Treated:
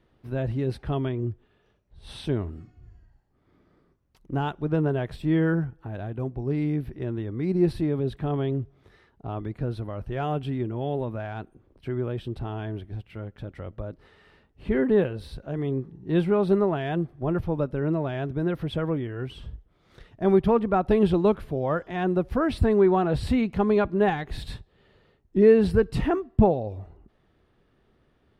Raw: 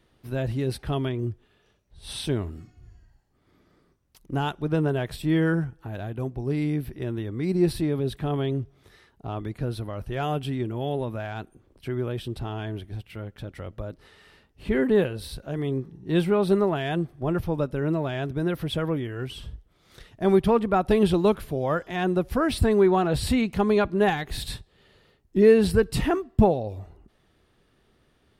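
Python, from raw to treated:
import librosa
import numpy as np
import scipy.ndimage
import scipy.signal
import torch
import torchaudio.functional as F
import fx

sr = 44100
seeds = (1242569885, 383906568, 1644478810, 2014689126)

y = fx.lowpass(x, sr, hz=1800.0, slope=6)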